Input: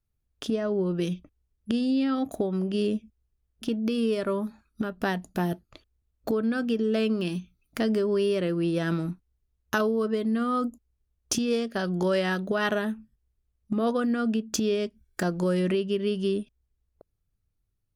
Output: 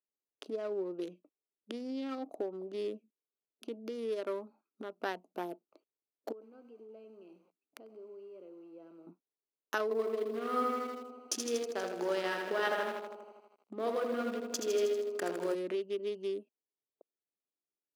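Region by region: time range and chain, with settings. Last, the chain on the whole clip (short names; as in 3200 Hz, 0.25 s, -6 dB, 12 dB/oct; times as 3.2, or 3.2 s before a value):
6.32–9.07 compressor 4:1, threshold -42 dBFS + lo-fi delay 96 ms, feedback 35%, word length 8-bit, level -9 dB
9.83–15.55 feedback echo 68 ms, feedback 32%, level -9.5 dB + lo-fi delay 80 ms, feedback 80%, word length 8-bit, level -5 dB
whole clip: Wiener smoothing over 25 samples; HPF 320 Hz 24 dB/oct; gain -6.5 dB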